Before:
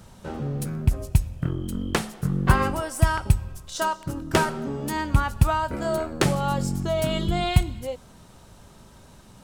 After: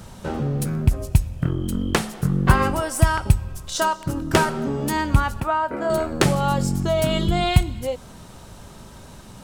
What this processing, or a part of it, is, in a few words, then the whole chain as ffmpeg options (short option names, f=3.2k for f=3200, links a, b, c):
parallel compression: -filter_complex "[0:a]asplit=2[a][b];[b]acompressor=threshold=-31dB:ratio=6,volume=-0.5dB[c];[a][c]amix=inputs=2:normalize=0,asettb=1/sr,asplit=3[d][e][f];[d]atrim=end=5.404[g];[e]atrim=start=5.4:end=5.9,asetpts=PTS-STARTPTS,afade=t=in:d=0.004:c=qsin,afade=t=out:st=0.496:d=0.004:c=qsin,acrossover=split=230 2400:gain=0.141 1 0.224[h][i][j];[h][i][j]amix=inputs=3:normalize=0[k];[f]atrim=start=5.896[l];[g][k]acrossfade=d=0.004:c1=hsin:c2=qsin[m];[m][l]acrossfade=d=0.004:c1=qsin:c2=hsin,volume=1.5dB"